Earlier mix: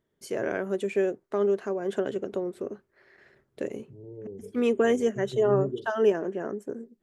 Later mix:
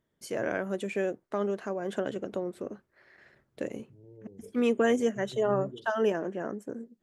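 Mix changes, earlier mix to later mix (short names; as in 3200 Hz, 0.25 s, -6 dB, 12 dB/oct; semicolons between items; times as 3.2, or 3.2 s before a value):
second voice -7.0 dB; master: add bell 400 Hz -8 dB 0.28 oct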